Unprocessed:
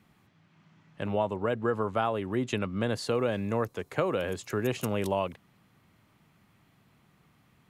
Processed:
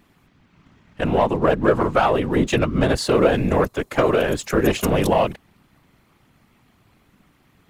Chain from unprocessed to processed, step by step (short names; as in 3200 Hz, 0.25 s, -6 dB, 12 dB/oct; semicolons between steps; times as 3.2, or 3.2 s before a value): sample leveller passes 1; whisperiser; gain +8 dB